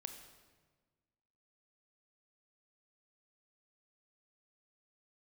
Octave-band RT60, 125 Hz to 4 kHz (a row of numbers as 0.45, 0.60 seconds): 1.8, 1.8, 1.5, 1.3, 1.2, 1.1 seconds